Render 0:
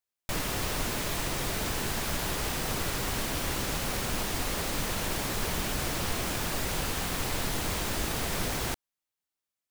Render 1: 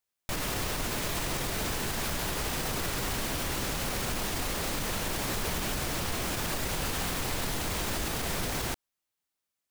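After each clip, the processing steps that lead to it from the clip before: peak limiter -25 dBFS, peak gain reduction 8 dB; trim +3 dB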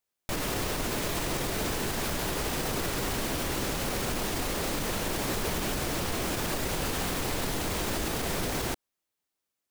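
peaking EQ 370 Hz +4.5 dB 1.8 oct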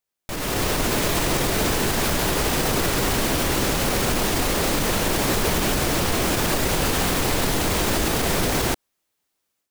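level rider gain up to 9 dB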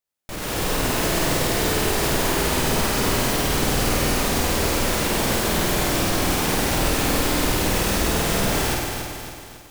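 flutter echo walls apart 8.6 m, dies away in 0.98 s; bit-crushed delay 274 ms, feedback 55%, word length 7-bit, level -6.5 dB; trim -3.5 dB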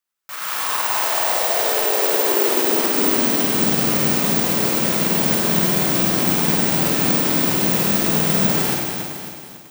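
high-pass sweep 1.2 kHz -> 170 Hz, 0.43–3.93 s; careless resampling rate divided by 2×, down none, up zero stuff; trim -1 dB

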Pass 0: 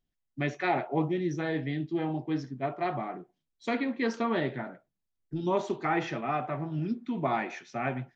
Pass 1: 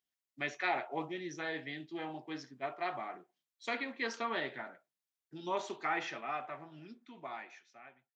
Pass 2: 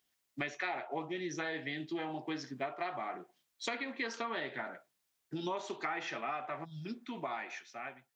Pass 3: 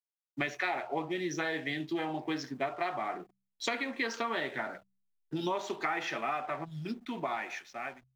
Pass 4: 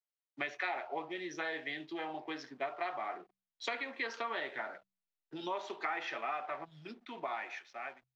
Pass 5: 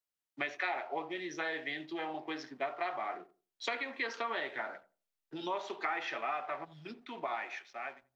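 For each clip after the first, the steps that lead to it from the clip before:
fade out at the end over 2.42 s; high-pass 1.3 kHz 6 dB/octave
time-frequency box 6.65–6.86 s, 250–3200 Hz -23 dB; compression 6:1, threshold -47 dBFS, peak gain reduction 17 dB; trim +11.5 dB
hysteresis with a dead band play -57.5 dBFS; de-hum 64.79 Hz, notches 3; trim +4.5 dB
three-band isolator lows -13 dB, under 360 Hz, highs -17 dB, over 5.4 kHz; trim -3.5 dB
filtered feedback delay 86 ms, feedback 23%, low-pass 930 Hz, level -15.5 dB; trim +1.5 dB

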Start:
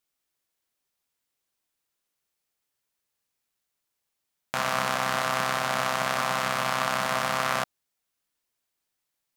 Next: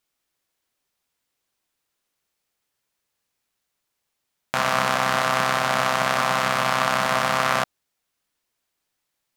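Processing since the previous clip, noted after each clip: treble shelf 6.9 kHz -4.5 dB; trim +5.5 dB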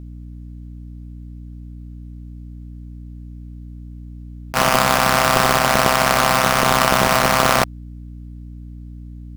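square wave that keeps the level; hum 60 Hz, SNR 14 dB; attacks held to a fixed rise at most 390 dB/s; trim +2 dB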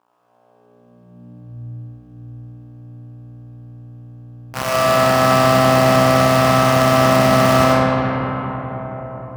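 crossover distortion -40 dBFS; high-pass sweep 990 Hz -> 83 Hz, 0.16–1.54 s; reverberation RT60 5.0 s, pre-delay 45 ms, DRR -7.5 dB; trim -8 dB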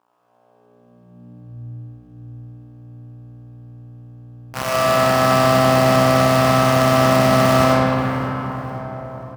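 feedback delay 531 ms, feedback 37%, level -20 dB; trim -1.5 dB

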